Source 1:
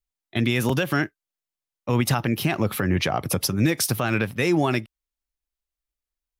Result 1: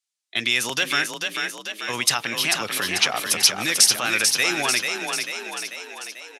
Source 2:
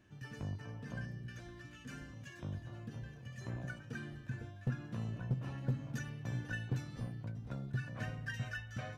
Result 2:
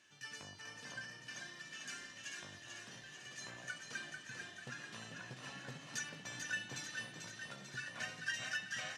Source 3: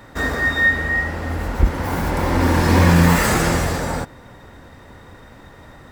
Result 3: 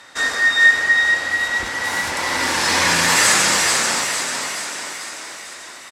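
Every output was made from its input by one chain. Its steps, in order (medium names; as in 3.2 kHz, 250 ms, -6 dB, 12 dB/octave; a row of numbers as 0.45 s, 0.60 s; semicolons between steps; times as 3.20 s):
frequency weighting ITU-R 468; on a send: frequency-shifting echo 442 ms, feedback 59%, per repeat +30 Hz, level -5 dB; on the sum: trim -1 dB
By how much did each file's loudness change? +2.5 LU, -2.5 LU, +2.0 LU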